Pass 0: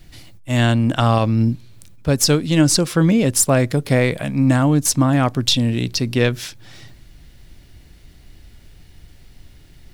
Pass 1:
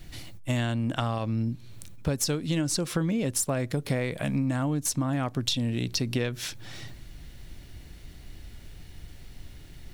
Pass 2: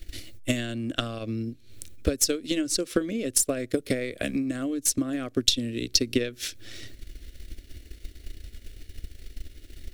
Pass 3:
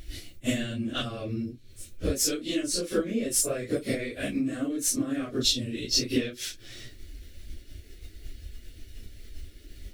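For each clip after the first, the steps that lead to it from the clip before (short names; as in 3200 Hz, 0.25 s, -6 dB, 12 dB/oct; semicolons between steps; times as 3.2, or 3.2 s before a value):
notch 4900 Hz, Q 22; compressor 12:1, threshold -24 dBFS, peak gain reduction 15 dB
transient shaper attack +9 dB, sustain -7 dB; fixed phaser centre 370 Hz, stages 4; gain +1.5 dB
phase scrambler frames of 0.1 s; gain -1.5 dB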